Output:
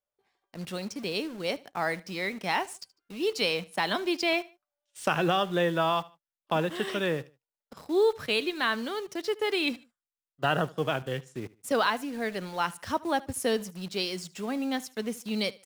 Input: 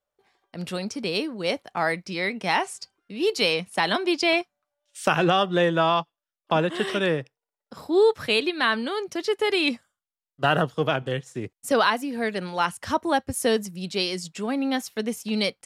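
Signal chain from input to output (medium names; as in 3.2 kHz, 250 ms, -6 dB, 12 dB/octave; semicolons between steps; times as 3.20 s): in parallel at -5 dB: bit crusher 6-bit; on the sum: feedback delay 75 ms, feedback 31%, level -21.5 dB; trim -9 dB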